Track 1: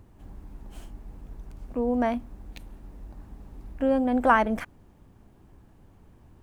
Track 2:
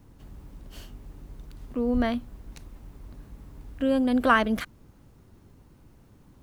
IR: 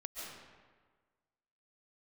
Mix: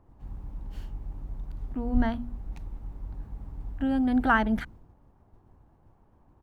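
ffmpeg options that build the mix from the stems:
-filter_complex "[0:a]equalizer=frequency=900:width=0.73:gain=12,volume=-11.5dB[link_01];[1:a]agate=range=-33dB:threshold=-45dB:ratio=3:detection=peak,lowshelf=frequency=110:gain=9,adelay=0.4,volume=-1dB[link_02];[link_01][link_02]amix=inputs=2:normalize=0,highshelf=frequency=2400:gain=-11.5,bandreject=frequency=60:width_type=h:width=6,bandreject=frequency=120:width_type=h:width=6,bandreject=frequency=180:width_type=h:width=6,bandreject=frequency=240:width_type=h:width=6"

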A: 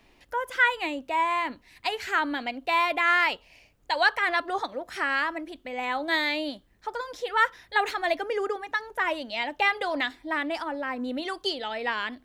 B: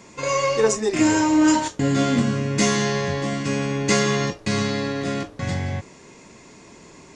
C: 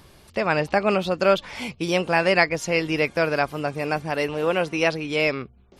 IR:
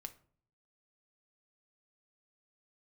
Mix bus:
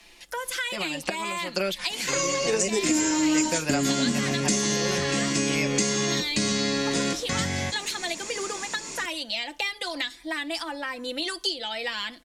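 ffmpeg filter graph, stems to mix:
-filter_complex "[0:a]lowpass=9200,aecho=1:1:5.9:0.6,acrossover=split=290|3000[link_01][link_02][link_03];[link_02]acompressor=threshold=-33dB:ratio=6[link_04];[link_01][link_04][link_03]amix=inputs=3:normalize=0,volume=-2dB,asplit=3[link_05][link_06][link_07];[link_06]volume=-6dB[link_08];[1:a]adelay=1900,volume=2dB[link_09];[2:a]aecho=1:1:5.6:0.73,acompressor=threshold=-19dB:ratio=6,adelay=350,volume=-2dB[link_10];[link_07]apad=whole_len=271041[link_11];[link_10][link_11]sidechaincompress=threshold=-45dB:ratio=8:attack=16:release=113[link_12];[link_05][link_09]amix=inputs=2:normalize=0,acompressor=threshold=-20dB:ratio=6,volume=0dB[link_13];[3:a]atrim=start_sample=2205[link_14];[link_08][link_14]afir=irnorm=-1:irlink=0[link_15];[link_12][link_13][link_15]amix=inputs=3:normalize=0,equalizer=frequency=110:width=2.7:gain=-14,crystalizer=i=6.5:c=0,acrossover=split=450[link_16][link_17];[link_17]acompressor=threshold=-28dB:ratio=3[link_18];[link_16][link_18]amix=inputs=2:normalize=0"

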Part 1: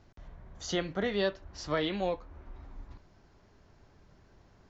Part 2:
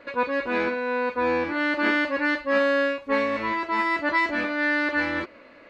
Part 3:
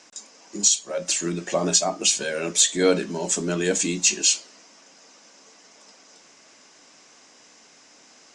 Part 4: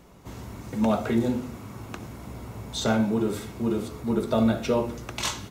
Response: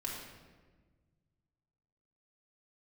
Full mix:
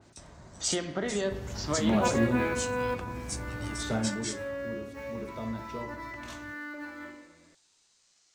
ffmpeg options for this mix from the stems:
-filter_complex "[0:a]highpass=100,acompressor=threshold=-33dB:ratio=6,volume=2.5dB,asplit=3[link_01][link_02][link_03];[link_02]volume=-5dB[link_04];[1:a]acrusher=bits=6:mode=log:mix=0:aa=0.000001,adelay=1850,volume=-6dB,asplit=2[link_05][link_06];[link_06]volume=-14.5dB[link_07];[2:a]highpass=frequency=940:width=0.5412,highpass=frequency=940:width=1.3066,highshelf=frequency=2700:gain=9.5,aeval=exprs='val(0)*sin(2*PI*740*n/s+740*0.7/0.27*sin(2*PI*0.27*n/s))':channel_layout=same,volume=-18dB[link_08];[3:a]lowshelf=frequency=110:gain=11.5,adelay=1050,volume=-5.5dB,afade=type=out:start_time=3.65:duration=0.7:silence=0.266073[link_09];[link_03]apad=whole_len=332890[link_10];[link_05][link_10]sidechaingate=range=-23dB:threshold=-55dB:ratio=16:detection=peak[link_11];[4:a]atrim=start_sample=2205[link_12];[link_04][link_07]amix=inputs=2:normalize=0[link_13];[link_13][link_12]afir=irnorm=-1:irlink=0[link_14];[link_01][link_11][link_08][link_09][link_14]amix=inputs=5:normalize=0,adynamicequalizer=threshold=0.00501:dfrequency=2700:dqfactor=0.7:tfrequency=2700:tqfactor=0.7:attack=5:release=100:ratio=0.375:range=3:mode=cutabove:tftype=highshelf"

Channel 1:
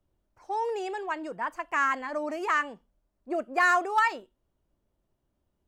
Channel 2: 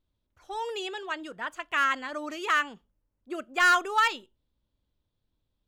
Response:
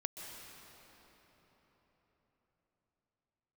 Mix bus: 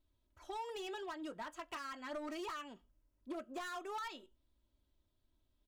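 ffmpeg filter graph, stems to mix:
-filter_complex "[0:a]acompressor=threshold=-32dB:ratio=6,flanger=delay=17:depth=5.3:speed=0.84,volume=-12.5dB,asplit=2[link_01][link_02];[1:a]aecho=1:1:3.1:0.64,acompressor=threshold=-31dB:ratio=3,asoftclip=type=hard:threshold=-33dB,volume=-2.5dB[link_03];[link_02]apad=whole_len=250526[link_04];[link_03][link_04]sidechaincompress=threshold=-56dB:ratio=4:attack=46:release=427[link_05];[link_01][link_05]amix=inputs=2:normalize=0"

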